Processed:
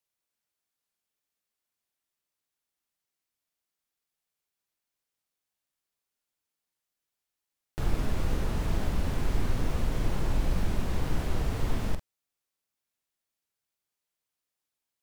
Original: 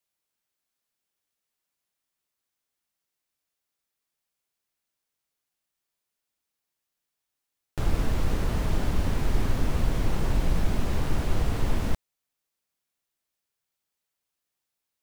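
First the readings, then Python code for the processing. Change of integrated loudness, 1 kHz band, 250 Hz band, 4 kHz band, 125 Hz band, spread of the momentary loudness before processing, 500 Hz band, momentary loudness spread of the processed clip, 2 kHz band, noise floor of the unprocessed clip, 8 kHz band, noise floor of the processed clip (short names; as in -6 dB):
-3.0 dB, -3.0 dB, -3.0 dB, -3.0 dB, -3.0 dB, 3 LU, -3.0 dB, 3 LU, -3.0 dB, -85 dBFS, -3.0 dB, under -85 dBFS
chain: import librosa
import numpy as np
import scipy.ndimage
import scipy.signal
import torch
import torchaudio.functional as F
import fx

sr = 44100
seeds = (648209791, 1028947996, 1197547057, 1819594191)

y = fx.doubler(x, sr, ms=45.0, db=-9.0)
y = fx.wow_flutter(y, sr, seeds[0], rate_hz=2.1, depth_cents=75.0)
y = y * librosa.db_to_amplitude(-3.5)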